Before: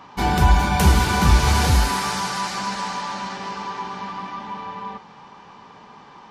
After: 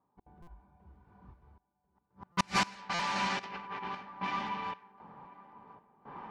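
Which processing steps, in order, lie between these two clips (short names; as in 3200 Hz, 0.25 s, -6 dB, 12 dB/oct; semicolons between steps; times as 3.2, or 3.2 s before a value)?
2.01–2.57 low shelf 310 Hz +12 dB; flipped gate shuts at -12 dBFS, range -35 dB; random-step tremolo 3.8 Hz, depth 100%; dynamic EQ 2400 Hz, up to +8 dB, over -55 dBFS, Q 1.6; thinning echo 1.04 s, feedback 43%, high-pass 270 Hz, level -18 dB; 3.39–4.03 negative-ratio compressor -40 dBFS, ratio -0.5; low-pass opened by the level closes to 770 Hz, open at -28.5 dBFS; stuck buffer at 0.42/2.32/2.94, samples 256, times 8; 0.48–1.42 detuned doubles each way 50 cents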